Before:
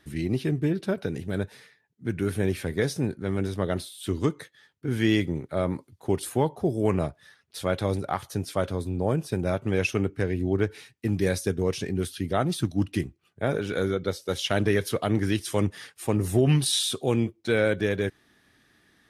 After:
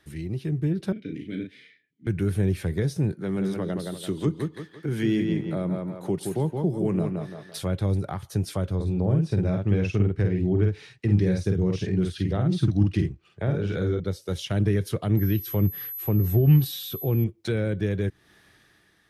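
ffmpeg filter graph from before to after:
-filter_complex "[0:a]asettb=1/sr,asplit=3[a][b][c];[a]atrim=end=0.924[d];[b]atrim=start=0.92:end=2.07,asetpts=PTS-STARTPTS,afade=t=in:d=0.004:c=qsin,afade=t=out:st=1.146:d=0.004:c=qsin,acontrast=72,asplit=3[e][f][g];[e]bandpass=f=270:t=q:w=8,volume=0dB[h];[f]bandpass=f=2.29k:t=q:w=8,volume=-6dB[i];[g]bandpass=f=3.01k:t=q:w=8,volume=-9dB[j];[h][i][j]amix=inputs=3:normalize=0,asplit=2[k][l];[l]adelay=37,volume=-5dB[m];[k][m]amix=inputs=2:normalize=0,atrim=end_sample=50715[n];[c]atrim=start=2.066[o];[d][n]acrossfade=d=0.004:c1=hsin:c2=qsin[p];[p][o]acrossfade=d=0.004:c1=qsin:c2=hsin,asettb=1/sr,asplit=3[q][r][s];[q]atrim=end=3.124[t];[r]atrim=start=3.12:end=7.63,asetpts=PTS-STARTPTS,afade=t=in:d=0.004:c=qsin,afade=t=out:st=4.506:d=0.004:c=qsin,highpass=f=140:w=0.5412,highpass=f=140:w=1.3066,asplit=2[u][v];[v]adelay=169,lowpass=f=3.8k:p=1,volume=-5dB,asplit=2[w][x];[x]adelay=169,lowpass=f=3.8k:p=1,volume=0.28,asplit=2[y][z];[z]adelay=169,lowpass=f=3.8k:p=1,volume=0.28,asplit=2[aa][ab];[ab]adelay=169,lowpass=f=3.8k:p=1,volume=0.28[ac];[u][w][y][aa][ac]amix=inputs=5:normalize=0,atrim=end_sample=198891[ad];[s]atrim=start=7.626[ae];[t][ad]acrossfade=d=0.004:c1=hsin:c2=qsin[af];[af][ae]acrossfade=d=0.004:c1=qsin:c2=hsin,asettb=1/sr,asplit=3[ag][ah][ai];[ag]atrim=end=8.754[aj];[ah]atrim=start=8.75:end=14,asetpts=PTS-STARTPTS,afade=t=in:d=0.004:c=qsin,afade=t=out:st=5.246:d=0.004:c=qsin,lowpass=5.9k,asplit=2[ak][al];[al]adelay=49,volume=-3.5dB[am];[ak][am]amix=inputs=2:normalize=0,atrim=end_sample=231525[an];[ai]atrim=start=13.996[ao];[aj][an]acrossfade=d=0.004:c1=hsin:c2=qsin[ap];[ap][ao]acrossfade=d=0.004:c1=qsin:c2=hsin,asettb=1/sr,asplit=3[aq][ar][as];[aq]atrim=end=15.174[at];[ar]atrim=start=15.17:end=17.24,asetpts=PTS-STARTPTS,afade=t=in:d=0.004:c=qsin,afade=t=out:st=2.066:d=0.004:c=qsin,aemphasis=mode=reproduction:type=50kf,aeval=exprs='val(0)+0.0282*sin(2*PI*12000*n/s)':c=same[au];[as]atrim=start=17.236[av];[at][au]acrossfade=d=0.004:c1=hsin:c2=qsin[aw];[aw][av]acrossfade=d=0.004:c1=qsin:c2=hsin,acrossover=split=290[ax][ay];[ay]acompressor=threshold=-41dB:ratio=4[az];[ax][az]amix=inputs=2:normalize=0,equalizer=f=250:w=6.2:g=-13,dynaudnorm=f=140:g=9:m=7.5dB,volume=-1.5dB"

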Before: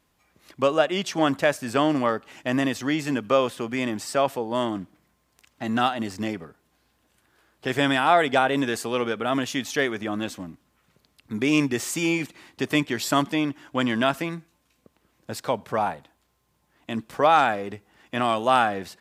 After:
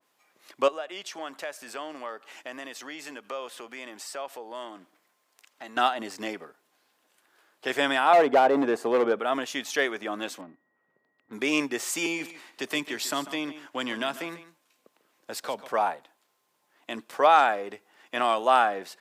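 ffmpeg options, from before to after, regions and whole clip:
-filter_complex "[0:a]asettb=1/sr,asplit=3[a][b][c];[a]atrim=end=0.684[d];[b]atrim=start=0.68:end=5.77,asetpts=PTS-STARTPTS,afade=t=in:d=0.004:c=qsin,afade=t=out:st=5.086:d=0.004:c=qsin,lowshelf=f=240:g=-8.5,acompressor=threshold=-40dB:ratio=2:attack=3.2:release=140:knee=1:detection=peak[e];[c]atrim=start=5.766[f];[d][e]acrossfade=d=0.004:c1=hsin:c2=qsin[g];[g][f]acrossfade=d=0.004:c1=qsin:c2=hsin,asettb=1/sr,asplit=3[h][i][j];[h]atrim=end=8.134[k];[i]atrim=start=8.13:end=9.19,asetpts=PTS-STARTPTS,afade=t=in:d=0.004:c=qsin,afade=t=out:st=1.056:d=0.004:c=qsin,tiltshelf=f=1.5k:g=8.5,asoftclip=type=hard:threshold=-13dB[l];[j]atrim=start=9.186[m];[k][l]acrossfade=d=0.004:c1=hsin:c2=qsin[n];[n][m]acrossfade=d=0.004:c1=qsin:c2=hsin,asettb=1/sr,asplit=3[o][p][q];[o]atrim=end=10.414[r];[p]atrim=start=10.41:end=11.33,asetpts=PTS-STARTPTS,afade=t=in:d=0.004:c=qsin,afade=t=out:st=0.916:d=0.004:c=qsin,aeval=exprs='val(0)+0.00126*sin(2*PI*1900*n/s)':c=same,adynamicsmooth=sensitivity=3.5:basefreq=840[s];[q]atrim=start=11.326[t];[r][s]acrossfade=d=0.004:c1=hsin:c2=qsin[u];[u][t]acrossfade=d=0.004:c1=qsin:c2=hsin,asettb=1/sr,asplit=3[v][w][x];[v]atrim=end=12.064[y];[w]atrim=start=12.06:end=15.68,asetpts=PTS-STARTPTS,afade=t=in:d=0.004:c=qsin,afade=t=out:st=3.616:d=0.004:c=qsin,acrossover=split=270|3000[z][aa][ab];[aa]acompressor=threshold=-31dB:ratio=2:attack=3.2:release=140:knee=2.83:detection=peak[ac];[z][ac][ab]amix=inputs=3:normalize=0,aecho=1:1:145:0.188,atrim=end_sample=159642[ad];[x]atrim=start=15.676[ae];[y][ad]acrossfade=d=0.004:c1=hsin:c2=qsin[af];[af][ae]acrossfade=d=0.004:c1=qsin:c2=hsin,highpass=410,adynamicequalizer=threshold=0.0178:dfrequency=1700:dqfactor=0.7:tfrequency=1700:tqfactor=0.7:attack=5:release=100:ratio=0.375:range=3.5:mode=cutabove:tftype=highshelf"

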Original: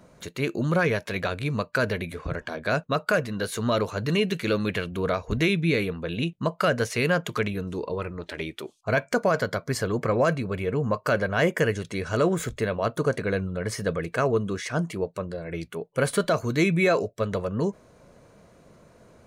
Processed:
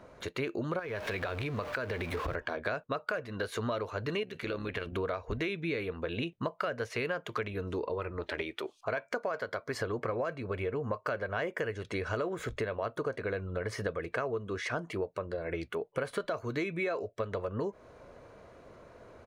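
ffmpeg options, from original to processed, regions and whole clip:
-filter_complex "[0:a]asettb=1/sr,asplit=3[a][b][c];[a]atrim=end=0.794[d];[b]atrim=start=0.79:end=2.35,asetpts=PTS-STARTPTS,afade=t=in:d=0.004:c=qsin,afade=t=out:st=1.556:d=0.004:c=qsin,aeval=exprs='val(0)+0.5*0.02*sgn(val(0))':c=same,acompressor=threshold=-28dB:ratio=4:attack=3.2:release=140:knee=1:detection=peak[e];[c]atrim=start=2.346[f];[d][e]acrossfade=d=0.004:c1=hsin:c2=qsin[g];[g][f]acrossfade=d=0.004:c1=qsin:c2=hsin,asettb=1/sr,asplit=3[h][i][j];[h]atrim=end=4.234[k];[i]atrim=start=4.23:end=4.93,asetpts=PTS-STARTPTS,afade=t=in:d=0.004:c=qsin,afade=t=out:st=0.696:d=0.004:c=qsin,acompressor=threshold=-28dB:ratio=3:attack=3.2:release=140:knee=1:detection=peak,tremolo=f=70:d=0.571[l];[j]atrim=start=4.926[m];[k][l]acrossfade=d=0.004:c1=hsin:c2=qsin[n];[n][m]acrossfade=d=0.004:c1=qsin:c2=hsin,asettb=1/sr,asplit=3[o][p][q];[o]atrim=end=8.424[r];[p]atrim=start=8.42:end=9.8,asetpts=PTS-STARTPTS,afade=t=in:d=0.004:c=qsin,afade=t=out:st=1.376:d=0.004:c=qsin,lowshelf=f=180:g=-9,acompressor=mode=upward:threshold=-43dB:ratio=2.5:attack=3.2:release=140:knee=2.83:detection=peak[s];[q]atrim=start=9.796[t];[r][s]acrossfade=d=0.004:c1=hsin:c2=qsin[u];[u][t]acrossfade=d=0.004:c1=qsin:c2=hsin,firequalizer=gain_entry='entry(100,0);entry(170,-9);entry(250,-2);entry(380,2);entry(1200,3);entry(7700,-10)':delay=0.05:min_phase=1,acompressor=threshold=-31dB:ratio=6"

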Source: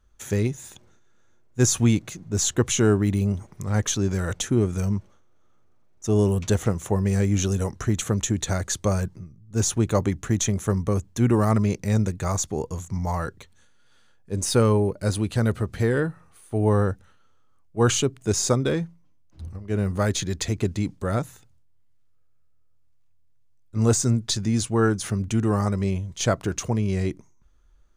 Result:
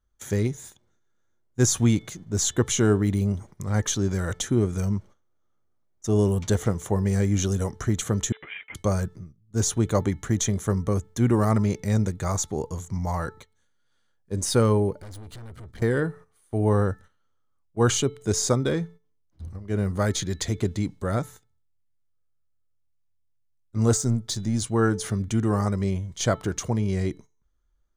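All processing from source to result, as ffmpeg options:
-filter_complex "[0:a]asettb=1/sr,asplit=3[a][b][c];[a]atrim=end=8.324[d];[b]atrim=start=8.32:end=8.75,asetpts=PTS-STARTPTS,afade=t=in:d=0.004:c=qsin,afade=t=out:st=0.426:d=0.004:c=qsin,aeval=exprs='if(lt(val(0),0),0.447*val(0),val(0))':c=same,highpass=f=1.3k:t=q:w=1.5,lowpass=f=3.2k:t=q:w=0.5098,lowpass=f=3.2k:t=q:w=0.6013,lowpass=f=3.2k:t=q:w=0.9,lowpass=f=3.2k:t=q:w=2.563,afreqshift=-3800[e];[c]atrim=start=8.746[f];[d][e]acrossfade=d=0.004:c1=hsin:c2=qsin[g];[g][f]acrossfade=d=0.004:c1=qsin:c2=hsin,asettb=1/sr,asplit=3[h][i][j];[h]atrim=end=15.004[k];[i]atrim=start=15:end=15.82,asetpts=PTS-STARTPTS,afade=t=in:d=0.004:c=qsin,afade=t=out:st=0.816:d=0.004:c=qsin,lowshelf=f=89:g=11,acompressor=threshold=-26dB:ratio=6:attack=3.2:release=140:knee=1:detection=peak,aeval=exprs='(tanh(79.4*val(0)+0.35)-tanh(0.35))/79.4':c=same[l];[j]atrim=start=15.816[m];[k][l]acrossfade=d=0.004:c1=hsin:c2=qsin[n];[n][m]acrossfade=d=0.004:c1=qsin:c2=hsin,asettb=1/sr,asplit=3[o][p][q];[o]atrim=end=23.974[r];[p]atrim=start=23.97:end=24.62,asetpts=PTS-STARTPTS,afade=t=in:d=0.004:c=qsin,afade=t=out:st=0.646:d=0.004:c=qsin,aeval=exprs='if(lt(val(0),0),0.708*val(0),val(0))':c=same,equalizer=f=1.9k:w=0.37:g=-3.5[s];[q]atrim=start=24.616[t];[r][s]acrossfade=d=0.004:c1=hsin:c2=qsin[u];[u][t]acrossfade=d=0.004:c1=qsin:c2=hsin,bandreject=f=437.3:t=h:w=4,bandreject=f=874.6:t=h:w=4,bandreject=f=1.3119k:t=h:w=4,bandreject=f=1.7492k:t=h:w=4,bandreject=f=2.1865k:t=h:w=4,bandreject=f=2.6238k:t=h:w=4,bandreject=f=3.0611k:t=h:w=4,bandreject=f=3.4984k:t=h:w=4,bandreject=f=3.9357k:t=h:w=4,agate=range=-11dB:threshold=-42dB:ratio=16:detection=peak,bandreject=f=2.6k:w=8.9,volume=-1dB"

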